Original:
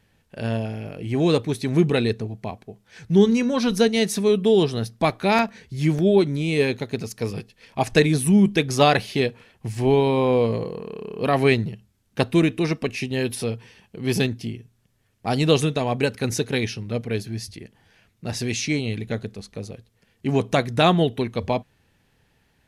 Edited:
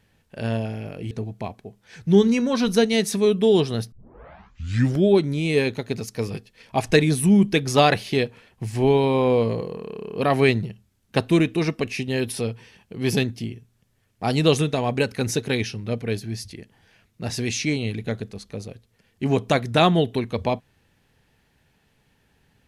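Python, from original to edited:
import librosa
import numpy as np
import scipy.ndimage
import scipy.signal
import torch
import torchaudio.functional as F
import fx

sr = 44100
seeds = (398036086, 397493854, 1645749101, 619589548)

y = fx.edit(x, sr, fx.cut(start_s=1.11, length_s=1.03),
    fx.tape_start(start_s=4.95, length_s=1.13), tone=tone)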